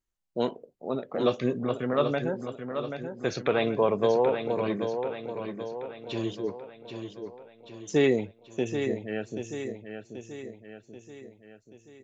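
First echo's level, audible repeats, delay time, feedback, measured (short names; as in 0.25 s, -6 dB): -7.5 dB, 5, 0.783 s, 52%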